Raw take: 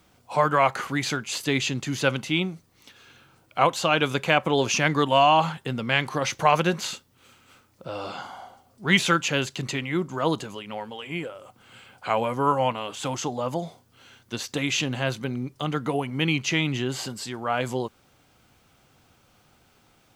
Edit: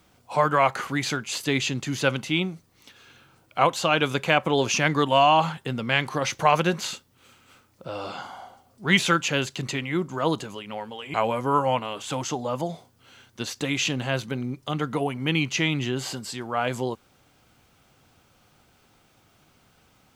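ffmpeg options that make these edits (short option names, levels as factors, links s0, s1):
-filter_complex "[0:a]asplit=2[s0][s1];[s0]atrim=end=11.142[s2];[s1]atrim=start=12.068[s3];[s2][s3]acrossfade=d=0.004:c1=hsin:c2=hsin"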